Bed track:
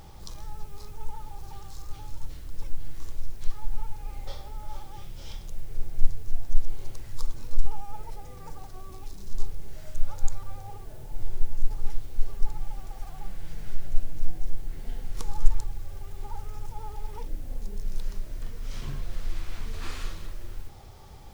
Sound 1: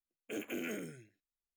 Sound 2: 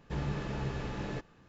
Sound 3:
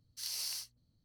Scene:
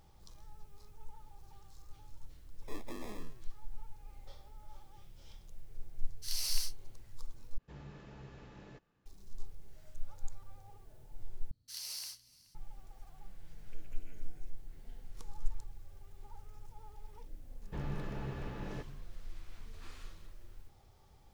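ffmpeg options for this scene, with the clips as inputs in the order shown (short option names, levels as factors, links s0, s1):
-filter_complex "[1:a]asplit=2[s0][s1];[3:a]asplit=2[s2][s3];[2:a]asplit=2[s4][s5];[0:a]volume=0.178[s6];[s0]acrusher=samples=30:mix=1:aa=0.000001[s7];[s2]dynaudnorm=f=150:g=3:m=2.66[s8];[s3]aecho=1:1:424:0.0841[s9];[s1]acompressor=threshold=0.002:ratio=6:attack=3.2:release=140:knee=1:detection=peak[s10];[s5]lowpass=f=3100:p=1[s11];[s6]asplit=3[s12][s13][s14];[s12]atrim=end=7.584[s15];[s4]atrim=end=1.48,asetpts=PTS-STARTPTS,volume=0.158[s16];[s13]atrim=start=9.056:end=11.514[s17];[s9]atrim=end=1.04,asetpts=PTS-STARTPTS,volume=0.631[s18];[s14]atrim=start=12.546[s19];[s7]atrim=end=1.56,asetpts=PTS-STARTPTS,volume=0.473,afade=t=in:d=0.004:c=hsin,afade=t=out:st=1.556:d=0.004:c=hsin,adelay=2380[s20];[s8]atrim=end=1.04,asetpts=PTS-STARTPTS,volume=0.473,afade=t=in:d=0.004:c=hsin,afade=t=out:st=1.036:d=0.004:c=hsin,adelay=6050[s21];[s10]atrim=end=1.56,asetpts=PTS-STARTPTS,volume=0.422,afade=t=in:d=0.004:c=hsin,afade=t=out:st=1.556:d=0.004:c=hsin,adelay=13430[s22];[s11]atrim=end=1.48,asetpts=PTS-STARTPTS,volume=0.531,afade=t=in:d=0.004:c=hsin,afade=t=out:st=1.476:d=0.004:c=hsin,adelay=17620[s23];[s15][s16]acrossfade=d=0.004:c1=hsin:c2=hsin[s24];[s24][s17]acrossfade=d=0.004:c1=hsin:c2=hsin[s25];[s25][s18]acrossfade=d=0.004:c1=hsin:c2=hsin[s26];[s26][s19]acrossfade=d=0.004:c1=hsin:c2=hsin[s27];[s27][s20][s21][s22][s23]amix=inputs=5:normalize=0"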